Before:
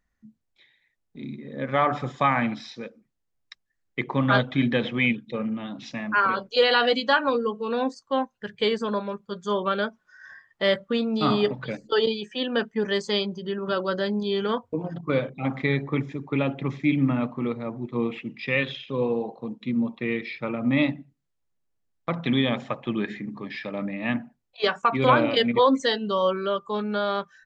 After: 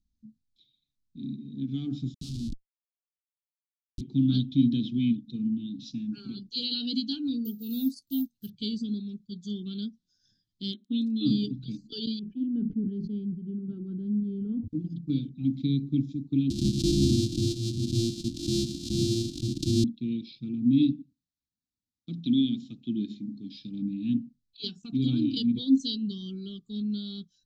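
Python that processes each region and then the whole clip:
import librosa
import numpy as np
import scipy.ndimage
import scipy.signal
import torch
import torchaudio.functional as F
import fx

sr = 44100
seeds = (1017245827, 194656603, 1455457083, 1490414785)

y = fx.chain(x, sr, fx.cvsd(bps=16000),
    fx.notch(hz=780.0, q=24.0),
    fx.schmitt(flips_db=-24.5), at=(2.14, 4.01))
y = fx.chain(y, sr, fx.block_float(bits=7),
    fx.peak_eq(hz=1200.0, db=3.0, octaves=1.8),
    fx.resample_bad(factor=3, down='none', up='zero_stuff'), at=(7.45, 8.5))
y = fx.brickwall_bandpass(y, sr, low_hz=210.0, high_hz=4200.0, at=(10.71, 11.25), fade=0.02)
y = fx.dmg_crackle(y, sr, seeds[0], per_s=20.0, level_db=-38.0, at=(10.71, 11.25), fade=0.02)
y = fx.chain(y, sr, fx.lowpass(hz=1400.0, slope=24),
    fx.sustainer(db_per_s=77.0), at=(12.19, 14.68))
y = fx.chain(y, sr, fx.sample_sort(block=128),
    fx.leveller(passes=2),
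    fx.pre_swell(db_per_s=86.0), at=(16.5, 19.84))
y = fx.chain(y, sr, fx.highpass(hz=110.0, slope=6),
    fx.peak_eq(hz=140.0, db=-7.5, octaves=0.37), at=(20.93, 23.56))
y = scipy.signal.sosfilt(scipy.signal.ellip(3, 1.0, 40, [270.0, 3900.0], 'bandstop', fs=sr, output='sos'), y)
y = fx.dynamic_eq(y, sr, hz=300.0, q=4.1, threshold_db=-43.0, ratio=4.0, max_db=5)
y = scipy.signal.sosfilt(scipy.signal.butter(2, 5800.0, 'lowpass', fs=sr, output='sos'), y)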